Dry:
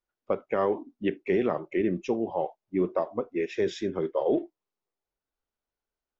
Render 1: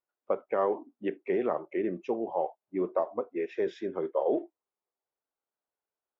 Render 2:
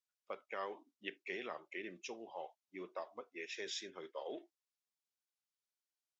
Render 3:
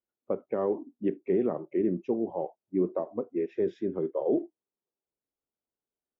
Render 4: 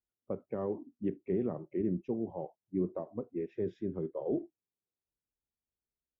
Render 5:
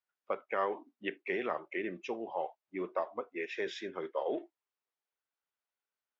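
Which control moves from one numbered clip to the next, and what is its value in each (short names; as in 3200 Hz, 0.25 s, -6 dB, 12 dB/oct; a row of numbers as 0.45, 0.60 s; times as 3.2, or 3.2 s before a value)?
band-pass, frequency: 760, 6100, 280, 110, 1900 Hz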